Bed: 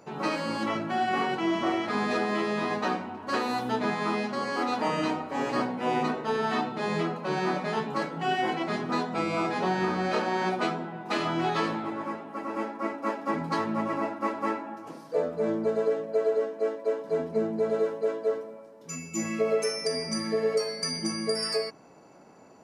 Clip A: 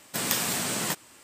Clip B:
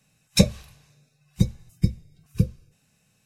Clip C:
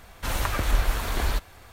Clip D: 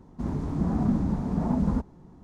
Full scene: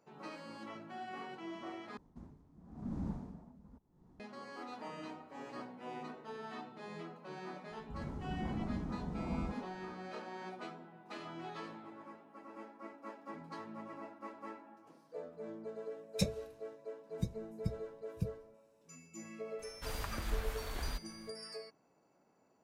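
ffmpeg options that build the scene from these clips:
ffmpeg -i bed.wav -i cue0.wav -i cue1.wav -i cue2.wav -i cue3.wav -filter_complex "[4:a]asplit=2[link_01][link_02];[0:a]volume=-18.5dB[link_03];[link_01]aeval=exprs='val(0)*pow(10,-23*(0.5-0.5*cos(2*PI*0.92*n/s))/20)':channel_layout=same[link_04];[link_02]acrossover=split=190[link_05][link_06];[link_06]adelay=110[link_07];[link_05][link_07]amix=inputs=2:normalize=0[link_08];[link_03]asplit=2[link_09][link_10];[link_09]atrim=end=1.974[link_11];[link_04]atrim=end=2.23,asetpts=PTS-STARTPTS,volume=-12dB[link_12];[link_10]atrim=start=4.196[link_13];[link_08]atrim=end=2.23,asetpts=PTS-STARTPTS,volume=-12.5dB,afade=type=in:duration=0.004:curve=hsin,afade=type=out:start_time=2.226:duration=0.004:curve=hsin,adelay=339570S[link_14];[2:a]atrim=end=3.25,asetpts=PTS-STARTPTS,volume=-16.5dB,afade=type=in:duration=0.004:curve=hsin,afade=type=out:start_time=3.246:duration=0.004:curve=hsin,adelay=15820[link_15];[3:a]atrim=end=1.72,asetpts=PTS-STARTPTS,volume=-14.5dB,afade=type=in:duration=0.004:curve=hsin,afade=type=out:start_time=1.716:duration=0.004:curve=hsin,adelay=19590[link_16];[link_11][link_12]acrossfade=duration=0.004:curve1=hsin:curve2=hsin[link_17];[link_17][link_13]acrossfade=duration=0.004:curve1=hsin:curve2=hsin[link_18];[link_18][link_14][link_15][link_16]amix=inputs=4:normalize=0" out.wav

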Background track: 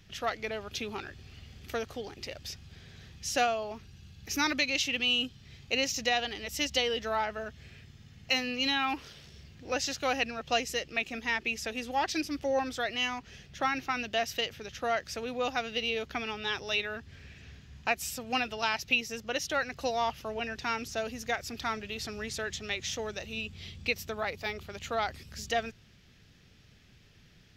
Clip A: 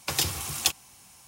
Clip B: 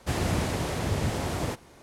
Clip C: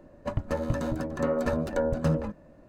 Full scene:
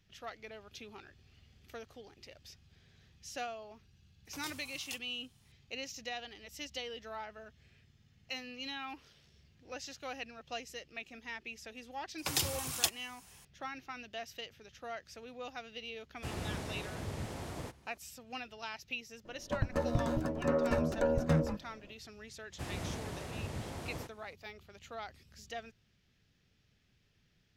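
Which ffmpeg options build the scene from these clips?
ffmpeg -i bed.wav -i cue0.wav -i cue1.wav -i cue2.wav -filter_complex "[1:a]asplit=2[link_01][link_02];[2:a]asplit=2[link_03][link_04];[0:a]volume=-13dB[link_05];[link_01]flanger=delay=17.5:depth=2.8:speed=2.2,atrim=end=1.27,asetpts=PTS-STARTPTS,volume=-17.5dB,afade=type=in:duration=0.004:curve=hsin,afade=type=out:start_time=1.266:duration=0.004:curve=hsin,adelay=187425S[link_06];[link_02]atrim=end=1.27,asetpts=PTS-STARTPTS,volume=-6dB,afade=type=in:duration=0.004:curve=hsin,afade=type=out:start_time=1.266:duration=0.004:curve=hsin,adelay=12180[link_07];[link_03]atrim=end=1.82,asetpts=PTS-STARTPTS,volume=-12.5dB,afade=type=in:duration=0.004:curve=hsin,afade=type=out:start_time=1.816:duration=0.004:curve=hsin,adelay=16160[link_08];[3:a]atrim=end=2.68,asetpts=PTS-STARTPTS,volume=-3.5dB,afade=type=in:duration=0.004:curve=hsin,afade=type=out:start_time=2.676:duration=0.004:curve=hsin,adelay=19250[link_09];[link_04]atrim=end=1.82,asetpts=PTS-STARTPTS,volume=-13dB,afade=type=in:duration=0.004:curve=hsin,afade=type=out:start_time=1.816:duration=0.004:curve=hsin,adelay=22520[link_10];[link_05][link_06][link_07][link_08][link_09][link_10]amix=inputs=6:normalize=0" out.wav

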